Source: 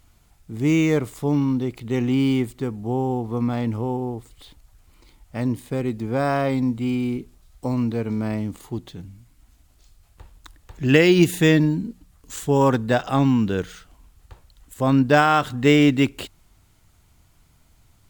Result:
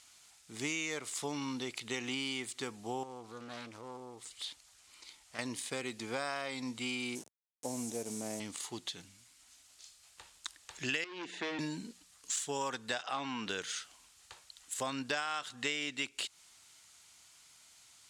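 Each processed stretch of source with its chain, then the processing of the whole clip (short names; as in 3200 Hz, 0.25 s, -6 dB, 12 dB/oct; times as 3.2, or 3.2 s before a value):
3.03–5.39 compressor 2.5:1, threshold -36 dBFS + Doppler distortion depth 0.45 ms
7.15–8.4 level-crossing sampler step -36 dBFS + HPF 98 Hz + band shelf 2200 Hz -15 dB 2.5 oct
11.04–11.59 HPF 210 Hz 24 dB/oct + hard clip -20 dBFS + tape spacing loss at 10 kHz 37 dB
13.03–13.49 notch 7000 Hz, Q 11 + overdrive pedal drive 12 dB, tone 1300 Hz, clips at -7.5 dBFS
whole clip: weighting filter ITU-R 468; compressor 6:1, threshold -30 dBFS; gain -3.5 dB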